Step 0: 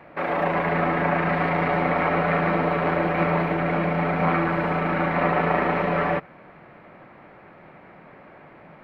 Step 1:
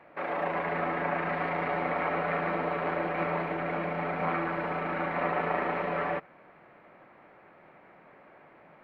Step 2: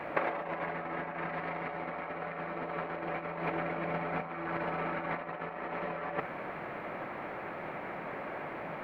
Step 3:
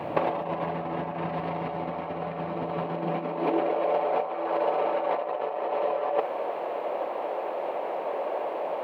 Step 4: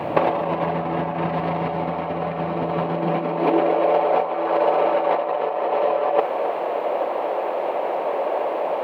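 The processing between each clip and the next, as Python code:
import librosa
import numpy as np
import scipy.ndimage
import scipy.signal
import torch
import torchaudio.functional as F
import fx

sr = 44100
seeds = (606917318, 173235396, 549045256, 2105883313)

y1 = fx.bass_treble(x, sr, bass_db=-7, treble_db=-4)
y1 = F.gain(torch.from_numpy(y1), -7.0).numpy()
y2 = fx.over_compress(y1, sr, threshold_db=-38.0, ratio=-0.5)
y2 = F.gain(torch.from_numpy(y2), 5.0).numpy()
y3 = fx.band_shelf(y2, sr, hz=1700.0, db=-11.0, octaves=1.1)
y3 = fx.filter_sweep_highpass(y3, sr, from_hz=100.0, to_hz=500.0, start_s=2.73, end_s=3.81, q=2.1)
y3 = F.gain(torch.from_numpy(y3), 7.0).numpy()
y4 = y3 + 10.0 ** (-14.0 / 20.0) * np.pad(y3, (int(264 * sr / 1000.0), 0))[:len(y3)]
y4 = F.gain(torch.from_numpy(y4), 7.0).numpy()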